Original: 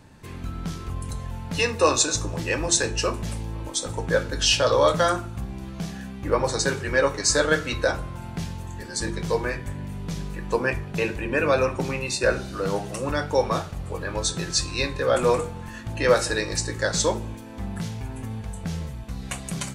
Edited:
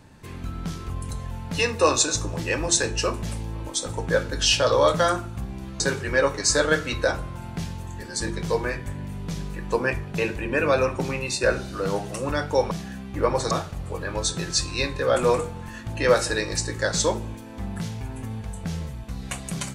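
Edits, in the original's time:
0:05.80–0:06.60: move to 0:13.51

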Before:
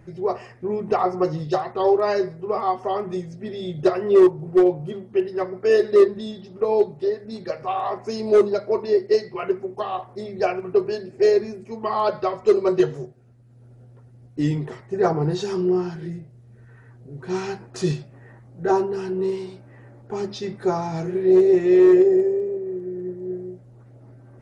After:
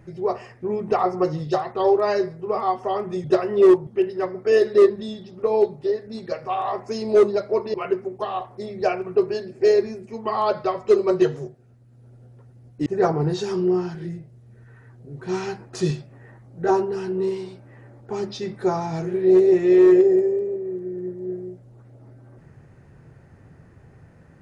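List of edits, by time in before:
0:03.24–0:03.77: remove
0:04.40–0:05.05: remove
0:08.92–0:09.32: remove
0:14.44–0:14.87: remove

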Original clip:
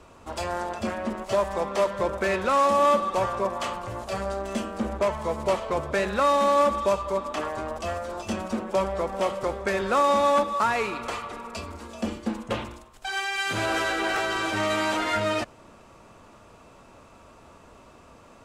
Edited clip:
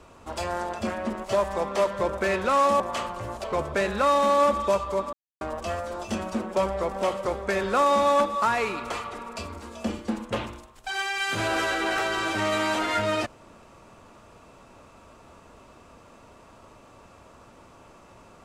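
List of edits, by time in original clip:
0:02.80–0:03.47: remove
0:04.11–0:05.62: remove
0:07.31–0:07.59: silence

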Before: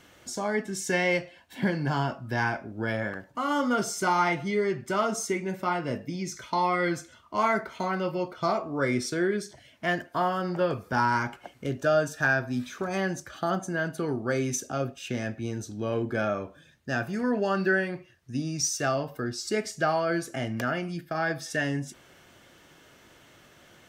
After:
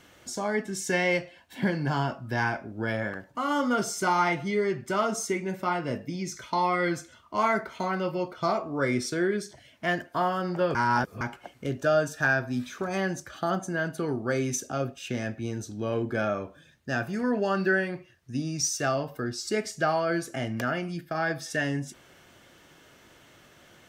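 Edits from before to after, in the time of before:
0:10.75–0:11.21: reverse

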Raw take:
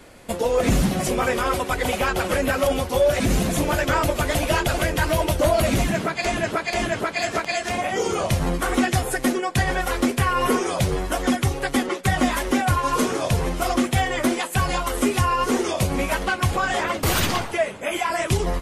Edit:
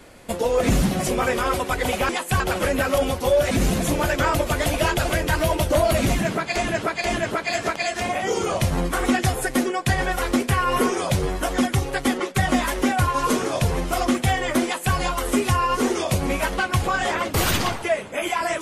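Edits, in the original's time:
0:14.33–0:14.64: duplicate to 0:02.09

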